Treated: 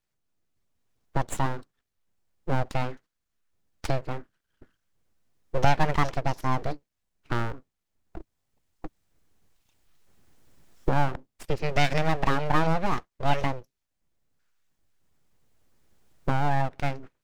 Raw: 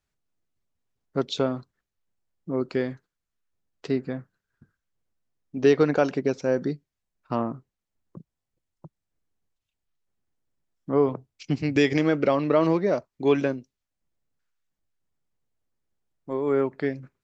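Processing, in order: recorder AGC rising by 7 dB/s; full-wave rectifier

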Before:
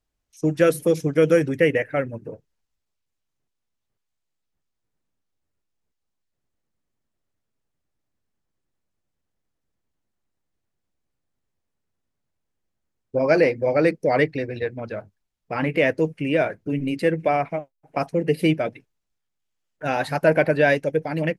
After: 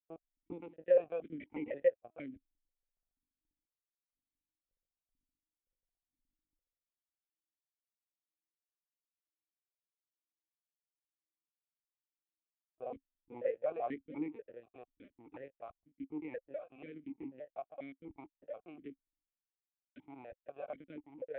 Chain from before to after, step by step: slices in reverse order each 0.164 s, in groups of 3; Doppler pass-by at 6.26, 15 m/s, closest 9 m; high shelf 2200 Hz -6.5 dB; in parallel at -3 dB: compressor 12:1, threshold -47 dBFS, peak gain reduction 16 dB; on the sum: backlash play -48 dBFS; LPC vocoder at 8 kHz pitch kept; vowel sequencer 4.1 Hz; gain +11 dB

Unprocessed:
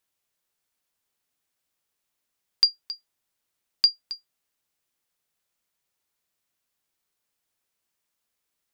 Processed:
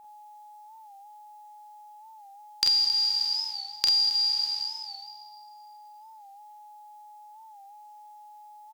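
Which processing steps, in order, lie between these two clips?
spectral trails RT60 1.87 s; high shelf 3400 Hz +7.5 dB; compressor 6:1, threshold -25 dBFS, peak gain reduction 16 dB; whine 840 Hz -49 dBFS; on a send: early reflections 33 ms -8.5 dB, 45 ms -5 dB; on the sum: record warp 45 rpm, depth 100 cents

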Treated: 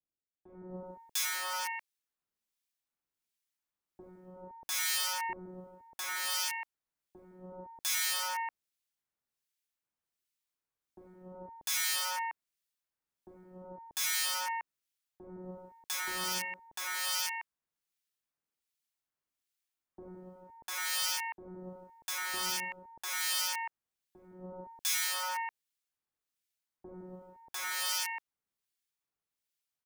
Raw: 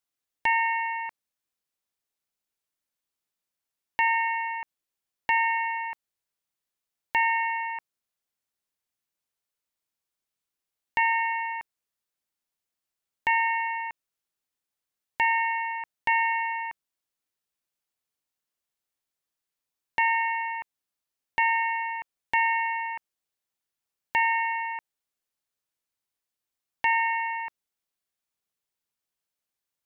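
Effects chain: wrapped overs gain 25 dB; harmonic tremolo 1.3 Hz, depth 70%, crossover 1800 Hz; bands offset in time lows, highs 0.7 s, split 600 Hz

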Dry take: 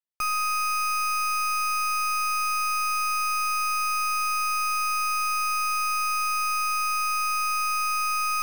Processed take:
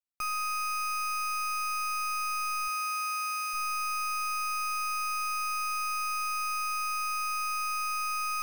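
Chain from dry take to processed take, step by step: 2.67–3.53 HPF 330 Hz -> 1200 Hz 12 dB/oct; gain -6 dB

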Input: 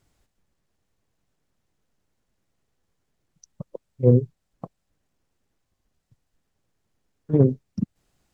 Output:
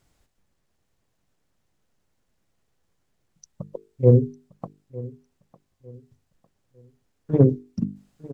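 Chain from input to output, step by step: notches 50/100/150/200/250/300/350/400/450 Hz; feedback echo 0.903 s, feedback 33%, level -19.5 dB; gain +2 dB

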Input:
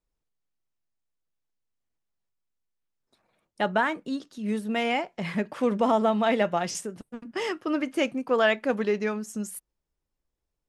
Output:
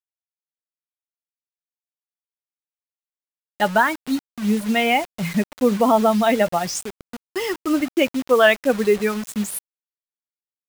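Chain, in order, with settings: per-bin expansion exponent 1.5; vocal rider within 4 dB 2 s; bit-crush 7-bit; gain +9 dB

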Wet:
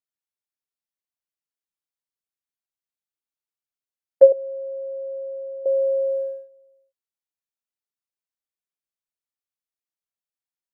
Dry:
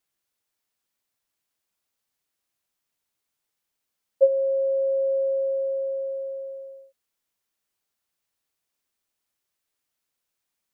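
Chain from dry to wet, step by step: gate -32 dBFS, range -23 dB; 4.32–5.66 double band-pass 500 Hz, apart 0.76 oct; gain +7 dB

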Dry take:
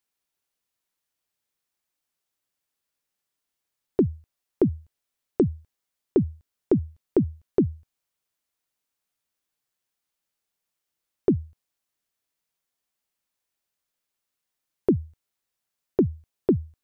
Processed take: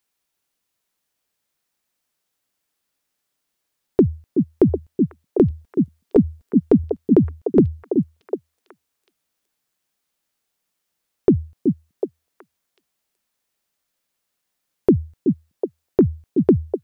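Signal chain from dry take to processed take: 5.5–6.84 comb 4.3 ms, depth 54%; on a send: delay with a stepping band-pass 0.374 s, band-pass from 220 Hz, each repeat 1.4 oct, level -0.5 dB; on the sum: gain +6 dB

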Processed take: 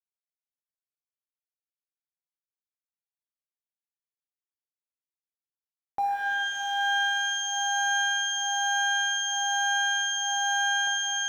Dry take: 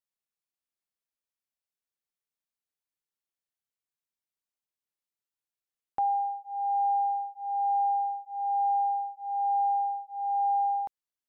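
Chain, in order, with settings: G.711 law mismatch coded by A; shimmer reverb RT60 3.2 s, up +12 st, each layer -2 dB, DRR 0.5 dB

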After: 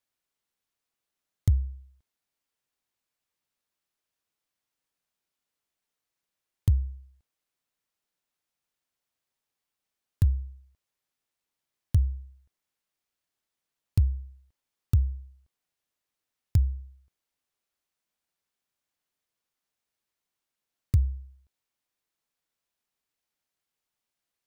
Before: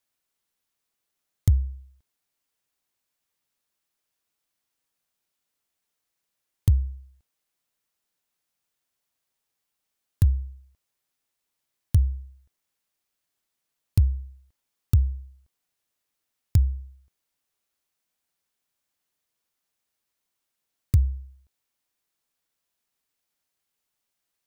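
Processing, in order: high shelf 6700 Hz -5 dB; gain -3 dB

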